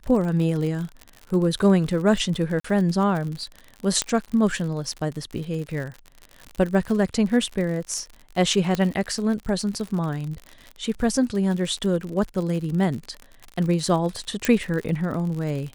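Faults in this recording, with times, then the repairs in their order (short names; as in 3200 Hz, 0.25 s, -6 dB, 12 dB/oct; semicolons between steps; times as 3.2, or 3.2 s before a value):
crackle 59/s -29 dBFS
2.6–2.64 gap 44 ms
4.02 pop -7 dBFS
8.75 pop -11 dBFS
14.45 pop -6 dBFS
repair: de-click; interpolate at 2.6, 44 ms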